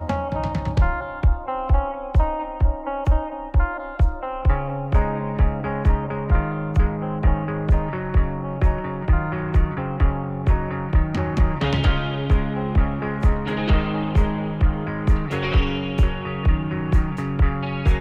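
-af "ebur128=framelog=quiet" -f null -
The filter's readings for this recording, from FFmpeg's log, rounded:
Integrated loudness:
  I:         -22.9 LUFS
  Threshold: -32.9 LUFS
Loudness range:
  LRA:         1.4 LU
  Threshold: -42.8 LUFS
  LRA low:   -23.5 LUFS
  LRA high:  -22.1 LUFS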